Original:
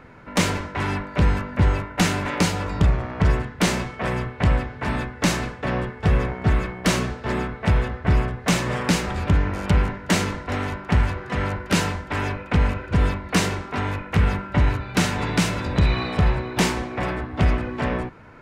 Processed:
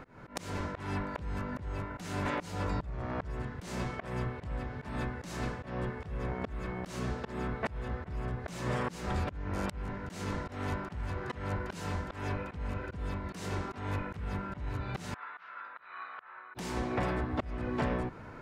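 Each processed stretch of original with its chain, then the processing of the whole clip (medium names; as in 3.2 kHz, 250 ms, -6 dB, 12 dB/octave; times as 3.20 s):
15.14–16.55 s: ladder band-pass 1.5 kHz, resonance 60% + distance through air 280 m
whole clip: peaking EQ 2.4 kHz -4 dB 1.2 oct; compression 6:1, threshold -28 dBFS; slow attack 225 ms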